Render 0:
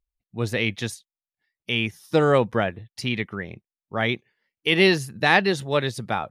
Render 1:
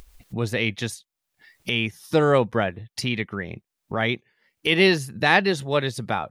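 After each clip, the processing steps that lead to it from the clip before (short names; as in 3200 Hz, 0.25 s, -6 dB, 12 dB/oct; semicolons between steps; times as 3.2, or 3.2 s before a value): upward compressor, threshold -23 dBFS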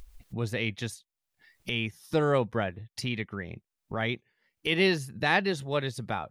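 low shelf 67 Hz +9.5 dB; gain -7 dB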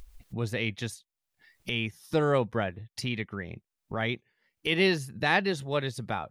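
nothing audible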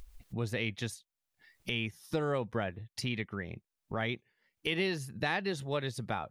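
compressor, threshold -26 dBFS, peak gain reduction 7.5 dB; gain -2 dB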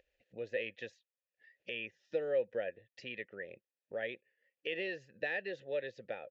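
vowel filter e; downsampling 16000 Hz; gain +6 dB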